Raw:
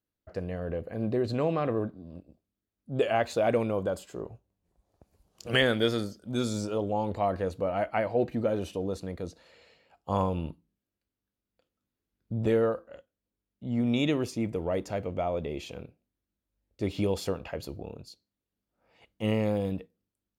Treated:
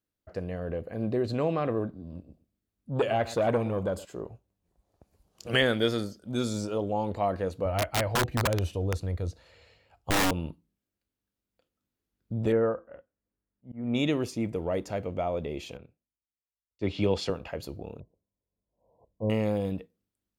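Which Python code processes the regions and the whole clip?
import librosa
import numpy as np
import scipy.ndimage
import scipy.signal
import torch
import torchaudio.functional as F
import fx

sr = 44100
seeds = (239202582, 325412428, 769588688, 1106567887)

y = fx.chain(x, sr, fx.low_shelf(hz=220.0, db=6.5),
    fx.echo_feedback(ms=118, feedback_pct=16, wet_db=-18.5),
    fx.transformer_sat(knee_hz=600.0), at=(1.88, 4.05))
y = fx.chain(y, sr, fx.low_shelf_res(hz=140.0, db=10.0, q=1.5),
    fx.overflow_wrap(gain_db=19.5), at=(7.65, 10.31))
y = fx.chain(y, sr, fx.lowpass(hz=2100.0, slope=24),
    fx.auto_swell(attack_ms=253.0), at=(12.52, 13.95))
y = fx.chain(y, sr, fx.lowpass(hz=3800.0, slope=12),
    fx.high_shelf(hz=2100.0, db=7.5),
    fx.band_widen(depth_pct=70), at=(15.77, 17.3))
y = fx.chain(y, sr, fx.brickwall_lowpass(high_hz=1100.0),
    fx.comb(ms=1.8, depth=0.4), at=(18.0, 19.3))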